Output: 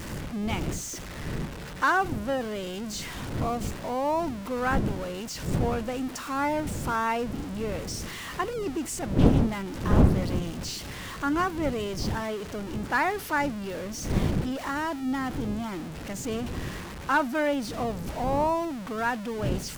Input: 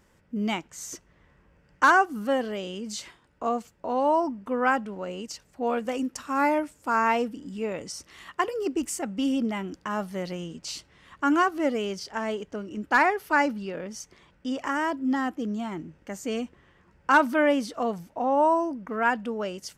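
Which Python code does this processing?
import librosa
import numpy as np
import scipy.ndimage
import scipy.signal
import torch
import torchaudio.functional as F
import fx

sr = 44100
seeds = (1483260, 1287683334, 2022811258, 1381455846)

y = x + 0.5 * 10.0 ** (-28.0 / 20.0) * np.sign(x)
y = fx.dmg_wind(y, sr, seeds[0], corner_hz=210.0, level_db=-26.0)
y = fx.doppler_dist(y, sr, depth_ms=0.57)
y = F.gain(torch.from_numpy(y), -5.5).numpy()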